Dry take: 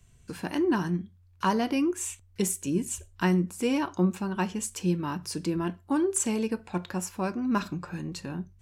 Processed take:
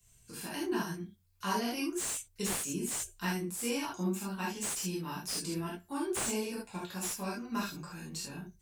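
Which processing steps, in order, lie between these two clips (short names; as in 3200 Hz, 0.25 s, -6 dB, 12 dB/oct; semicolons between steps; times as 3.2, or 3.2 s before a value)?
pre-emphasis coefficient 0.8; non-linear reverb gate 0.1 s flat, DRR -7.5 dB; slew limiter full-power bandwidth 180 Hz; gain -2 dB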